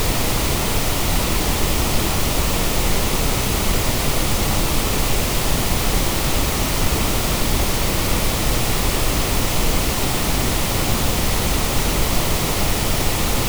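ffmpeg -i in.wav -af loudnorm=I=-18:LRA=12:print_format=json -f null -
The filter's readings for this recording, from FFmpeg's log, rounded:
"input_i" : "-19.6",
"input_tp" : "-4.7",
"input_lra" : "0.0",
"input_thresh" : "-29.6",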